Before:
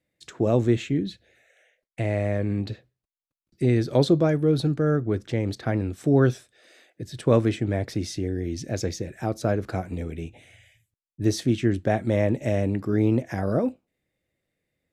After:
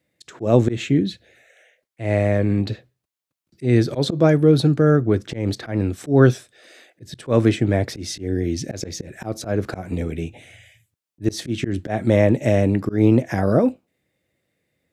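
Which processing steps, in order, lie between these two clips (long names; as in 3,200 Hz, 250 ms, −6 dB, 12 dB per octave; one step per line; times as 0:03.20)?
high-pass filter 74 Hz
volume swells 148 ms
level +7 dB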